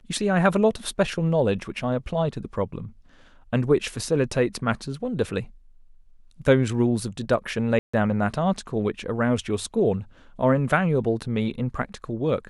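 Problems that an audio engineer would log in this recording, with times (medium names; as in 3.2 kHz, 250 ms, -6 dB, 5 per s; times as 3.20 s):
7.79–7.93 s: dropout 145 ms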